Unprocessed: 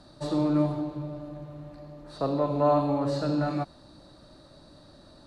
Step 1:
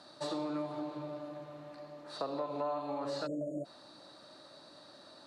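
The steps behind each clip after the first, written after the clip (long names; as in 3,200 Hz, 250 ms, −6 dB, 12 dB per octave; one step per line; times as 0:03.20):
time-frequency box erased 0:03.27–0:03.65, 700–6,600 Hz
meter weighting curve A
downward compressor 6 to 1, threshold −35 dBFS, peak gain reduction 13.5 dB
level +1 dB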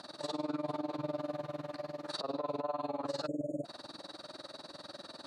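brickwall limiter −37 dBFS, peak gain reduction 12 dB
amplitude modulation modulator 20 Hz, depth 85%
level +10.5 dB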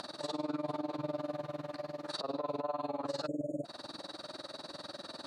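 upward compression, threshold −39 dBFS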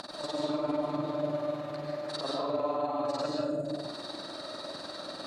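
comb and all-pass reverb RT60 0.93 s, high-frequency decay 0.7×, pre-delay 95 ms, DRR −2 dB
level +1.5 dB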